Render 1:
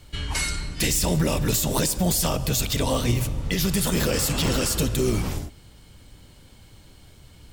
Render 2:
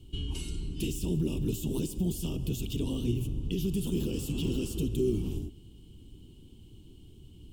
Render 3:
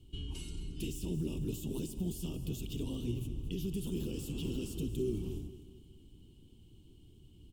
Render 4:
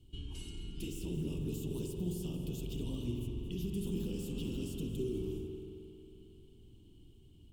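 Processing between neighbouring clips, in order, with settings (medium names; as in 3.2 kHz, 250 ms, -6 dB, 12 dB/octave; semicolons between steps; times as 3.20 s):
compression 2:1, threshold -29 dBFS, peak gain reduction 6.5 dB; FFT filter 140 Hz 0 dB, 380 Hz +5 dB, 560 Hz -17 dB, 940 Hz -16 dB, 2 kHz -29 dB, 2.9 kHz -1 dB, 4.2 kHz -15 dB, 9.1 kHz -10 dB; trim -2 dB
feedback delay 223 ms, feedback 47%, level -14 dB; trim -6.5 dB
reverberation RT60 3.2 s, pre-delay 45 ms, DRR 2.5 dB; trim -3 dB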